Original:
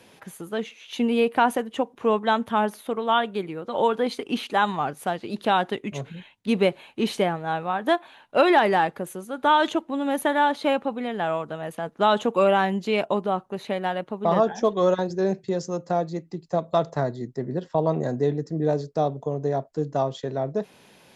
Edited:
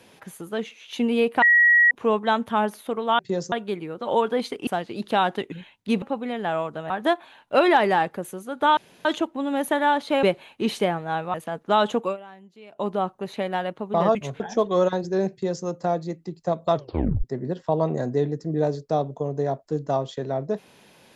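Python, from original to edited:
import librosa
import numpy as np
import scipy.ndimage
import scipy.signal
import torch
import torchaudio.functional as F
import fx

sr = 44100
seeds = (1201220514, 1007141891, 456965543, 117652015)

y = fx.edit(x, sr, fx.bleep(start_s=1.42, length_s=0.49, hz=1910.0, db=-12.5),
    fx.cut(start_s=4.34, length_s=0.67),
    fx.move(start_s=5.86, length_s=0.25, to_s=14.46),
    fx.swap(start_s=6.61, length_s=1.11, other_s=10.77, other_length_s=0.88),
    fx.insert_room_tone(at_s=9.59, length_s=0.28),
    fx.fade_down_up(start_s=12.31, length_s=0.89, db=-23.0, fade_s=0.17),
    fx.duplicate(start_s=15.38, length_s=0.33, to_s=3.19),
    fx.tape_stop(start_s=16.81, length_s=0.49), tone=tone)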